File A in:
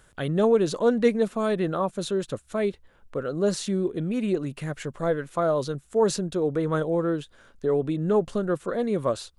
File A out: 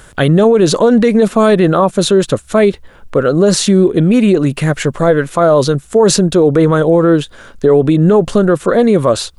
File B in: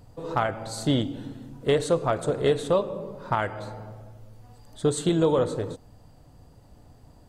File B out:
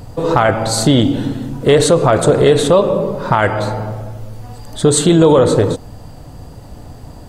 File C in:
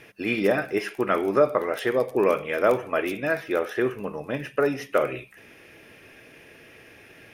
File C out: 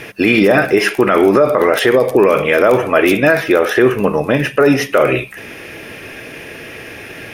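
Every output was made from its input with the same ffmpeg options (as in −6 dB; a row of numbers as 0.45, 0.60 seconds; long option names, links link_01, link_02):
-af "alimiter=level_in=19dB:limit=-1dB:release=50:level=0:latency=1,volume=-1dB"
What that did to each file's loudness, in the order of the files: +14.5, +13.0, +12.5 LU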